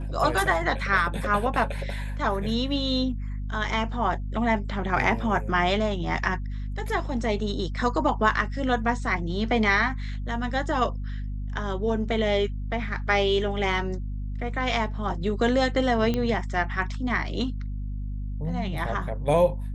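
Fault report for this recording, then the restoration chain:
mains hum 50 Hz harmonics 5 −31 dBFS
0:16.14: click −14 dBFS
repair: click removal
hum removal 50 Hz, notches 5

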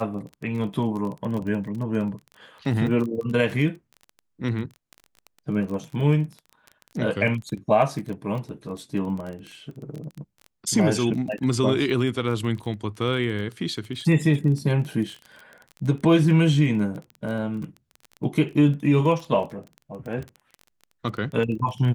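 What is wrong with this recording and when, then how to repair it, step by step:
surface crackle 22 per second −31 dBFS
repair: click removal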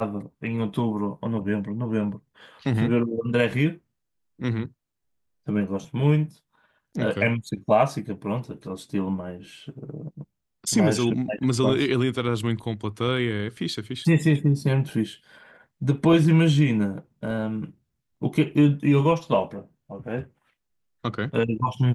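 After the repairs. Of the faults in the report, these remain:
none of them is left

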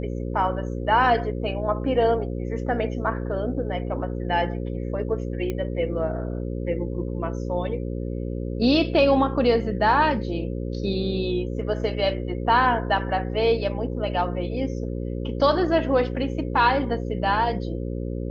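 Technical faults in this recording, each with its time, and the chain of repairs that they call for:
mains buzz 60 Hz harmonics 9 −29 dBFS
0:05.50: click −16 dBFS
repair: click removal
hum removal 60 Hz, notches 9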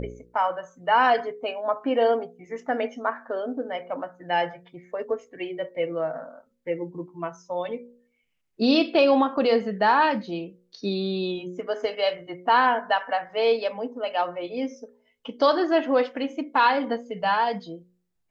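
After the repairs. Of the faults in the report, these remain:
none of them is left

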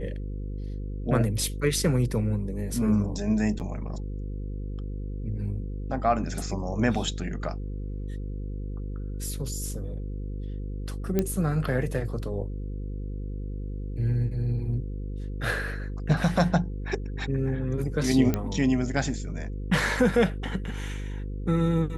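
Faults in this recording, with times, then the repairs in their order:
mains buzz 50 Hz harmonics 10 −33 dBFS
0:03.59–0:03.60: drop-out 8.5 ms
0:11.19: click −11 dBFS
0:18.34: click −12 dBFS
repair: click removal
hum removal 50 Hz, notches 10
repair the gap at 0:03.59, 8.5 ms

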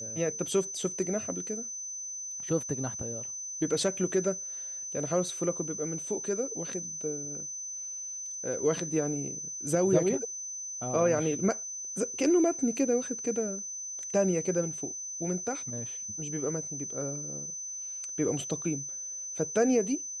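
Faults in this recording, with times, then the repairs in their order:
whistle 6,100 Hz −36 dBFS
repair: notch filter 6,100 Hz, Q 30

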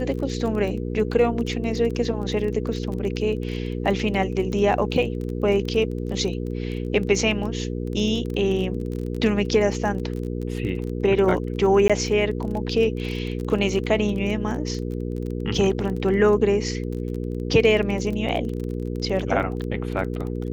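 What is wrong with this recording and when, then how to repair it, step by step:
surface crackle 25 per second −29 dBFS
mains hum 60 Hz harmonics 8 −28 dBFS
0:11.88–0:11.90: drop-out 16 ms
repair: click removal
hum removal 60 Hz, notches 8
repair the gap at 0:11.88, 16 ms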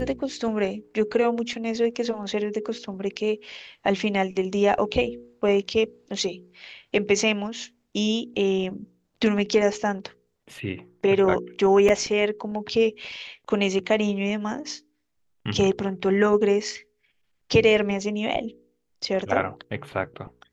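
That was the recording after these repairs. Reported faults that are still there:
none of them is left

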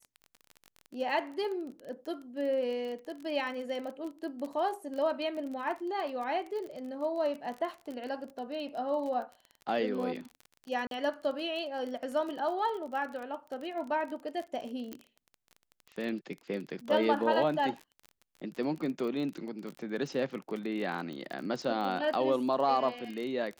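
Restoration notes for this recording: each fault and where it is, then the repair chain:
surface crackle 32 per second −37 dBFS
0:10.87–0:10.91: drop-out 42 ms
0:14.93: click −24 dBFS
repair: click removal
repair the gap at 0:10.87, 42 ms

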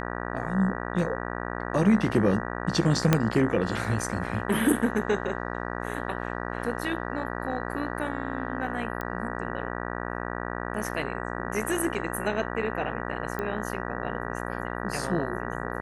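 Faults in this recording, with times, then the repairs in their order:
mains buzz 60 Hz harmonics 32 −33 dBFS
0:03.13: click −5 dBFS
0:09.01: click −19 dBFS
0:13.39: click −18 dBFS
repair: click removal
hum removal 60 Hz, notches 32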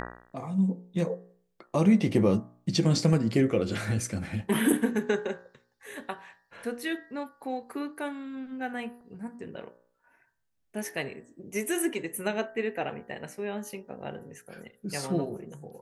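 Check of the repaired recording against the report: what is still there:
0:03.13: click

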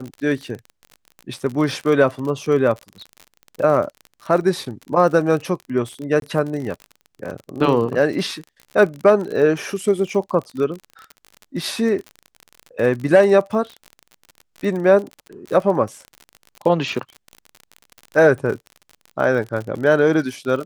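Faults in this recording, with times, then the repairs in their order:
surface crackle 44 per second −27 dBFS
0:06.20–0:06.22: drop-out 22 ms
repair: click removal
repair the gap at 0:06.20, 22 ms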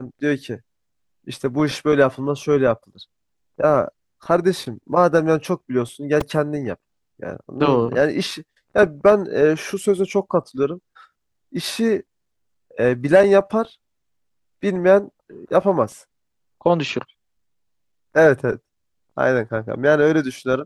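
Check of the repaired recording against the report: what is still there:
none of them is left

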